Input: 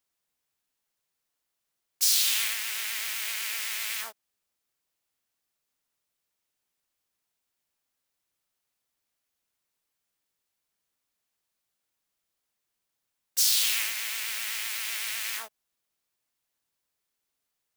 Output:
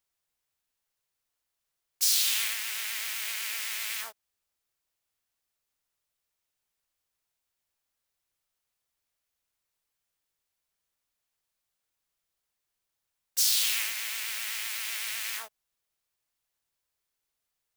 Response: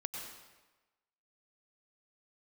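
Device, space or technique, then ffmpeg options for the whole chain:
low shelf boost with a cut just above: -af "lowshelf=frequency=84:gain=6.5,equalizer=frequency=240:width_type=o:width=1.1:gain=-5,volume=-1.5dB"

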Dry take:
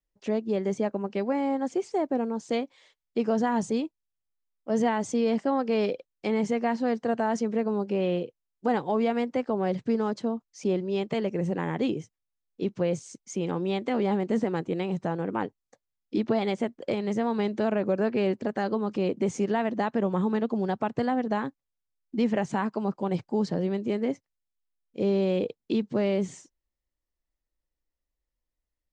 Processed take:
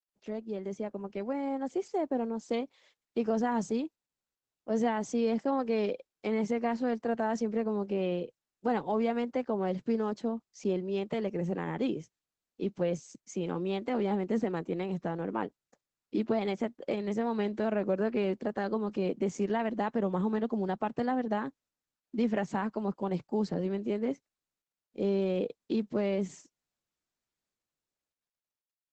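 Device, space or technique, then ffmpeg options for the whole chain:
video call: -af "highpass=frequency=140:width=0.5412,highpass=frequency=140:width=1.3066,dynaudnorm=framelen=250:gausssize=11:maxgain=5.5dB,volume=-9dB" -ar 48000 -c:a libopus -b:a 12k

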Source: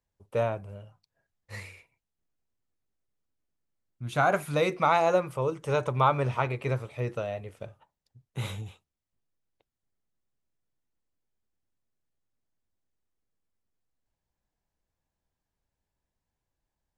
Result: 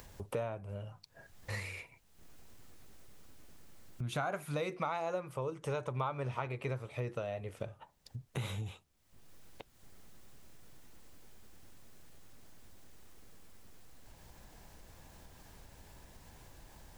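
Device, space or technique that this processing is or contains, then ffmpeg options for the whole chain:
upward and downward compression: -af "acompressor=mode=upward:threshold=-43dB:ratio=2.5,acompressor=threshold=-45dB:ratio=4,volume=7.5dB"

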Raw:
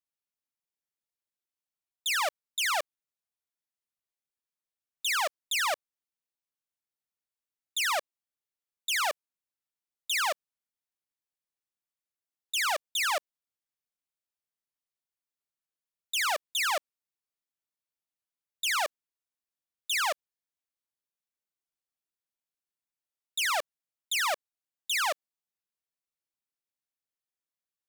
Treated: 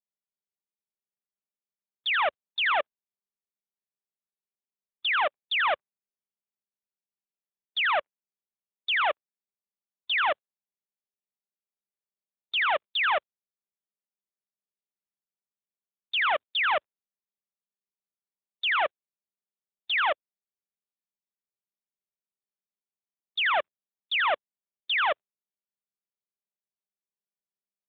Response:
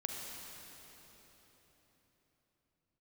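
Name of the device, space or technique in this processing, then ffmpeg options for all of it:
mobile call with aggressive noise cancelling: -af "highpass=frequency=120:width=0.5412,highpass=frequency=120:width=1.3066,afftdn=noise_reduction=19:noise_floor=-43,volume=5dB" -ar 8000 -c:a libopencore_amrnb -b:a 12200

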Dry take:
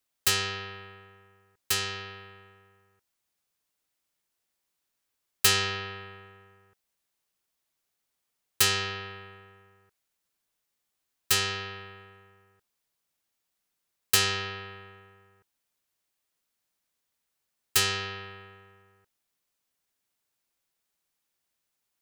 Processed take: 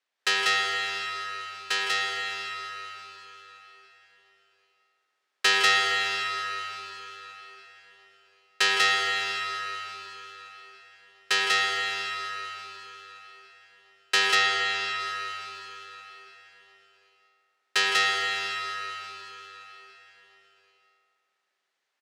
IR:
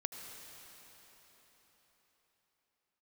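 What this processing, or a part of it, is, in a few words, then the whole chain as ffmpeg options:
station announcement: -filter_complex "[0:a]highpass=410,lowpass=4200,equalizer=frequency=1800:width_type=o:width=0.33:gain=5,aecho=1:1:160.3|192.4:0.282|0.891[link_01];[1:a]atrim=start_sample=2205[link_02];[link_01][link_02]afir=irnorm=-1:irlink=0,asettb=1/sr,asplit=3[link_03][link_04][link_05];[link_03]atrim=end=14.354[link_06];[link_04]atrim=start=14.35:end=15,asetpts=PTS-STARTPTS,afade=type=in:duration=0.004:curve=qsin,afade=type=out:start_time=0.646:duration=0.004:curve=qsin,lowpass=7700[link_07];[link_05]atrim=start=14.996[link_08];[link_06][link_07]acrossfade=duration=0.004:curve1=hsin:curve2=qsin[link_09];[link_09][link_08]acrossfade=duration=0.004:curve1=qsin:curve2=hsin,volume=4.5dB"

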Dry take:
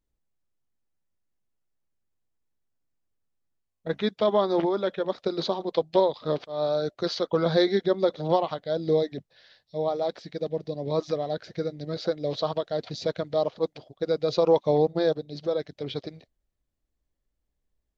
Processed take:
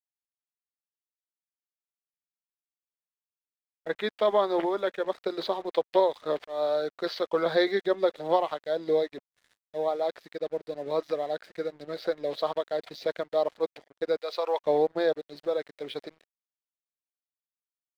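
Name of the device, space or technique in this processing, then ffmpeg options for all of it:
pocket radio on a weak battery: -filter_complex "[0:a]highpass=370,lowpass=3800,aeval=exprs='sgn(val(0))*max(abs(val(0))-0.00211,0)':channel_layout=same,equalizer=frequency=1900:width_type=o:width=0.59:gain=4.5,asettb=1/sr,asplit=3[link_01][link_02][link_03];[link_01]atrim=end=14.214[link_04];[link_02]atrim=start=14.21:end=14.61,asetpts=PTS-STARTPTS,afade=type=in:duration=0.004:curve=qsin,afade=type=out:start_time=0.396:duration=0.004:curve=qsin,highpass=730[link_05];[link_03]atrim=start=14.606[link_06];[link_04][link_05]acrossfade=duration=0.004:curve1=hsin:curve2=qsin[link_07];[link_07][link_06]acrossfade=duration=0.004:curve1=qsin:curve2=hsin"

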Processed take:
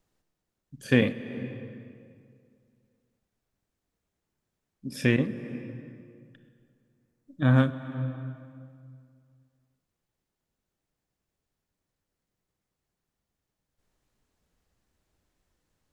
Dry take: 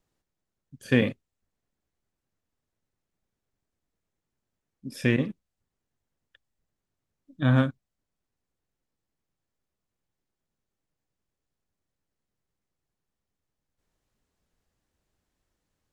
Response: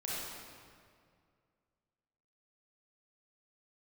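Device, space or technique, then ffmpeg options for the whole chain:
ducked reverb: -filter_complex "[0:a]asplit=3[link_01][link_02][link_03];[1:a]atrim=start_sample=2205[link_04];[link_02][link_04]afir=irnorm=-1:irlink=0[link_05];[link_03]apad=whole_len=702270[link_06];[link_05][link_06]sidechaincompress=threshold=-35dB:ratio=3:attack=11:release=286,volume=-7.5dB[link_07];[link_01][link_07]amix=inputs=2:normalize=0,asettb=1/sr,asplit=3[link_08][link_09][link_10];[link_08]atrim=end=5.194[link_11];[link_09]atrim=start=5.19:end=7.6,asetpts=PTS-STARTPTS,afade=type=in:duration=0.004:curve=qsin,afade=type=out:start_time=2.406:duration=0.004:curve=qsin,equalizer=frequency=3300:width_type=o:width=0.98:gain=-4.5[link_12];[link_10]atrim=start=7.596[link_13];[link_11][link_12]acrossfade=duration=0.004:curve1=hsin:curve2=qsin[link_14];[link_14][link_13]acrossfade=duration=0.004:curve1=qsin:curve2=hsin"

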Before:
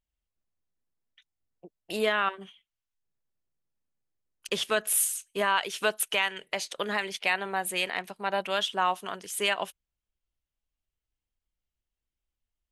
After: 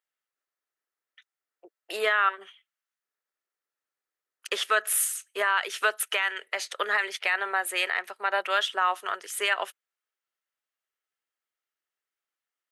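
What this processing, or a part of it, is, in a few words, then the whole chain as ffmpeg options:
laptop speaker: -af "highpass=frequency=360:width=0.5412,highpass=frequency=360:width=1.3066,equalizer=frequency=1300:width_type=o:width=0.26:gain=9,equalizer=frequency=1800:width_type=o:width=0.59:gain=8.5,alimiter=limit=-13.5dB:level=0:latency=1:release=59,highpass=210"

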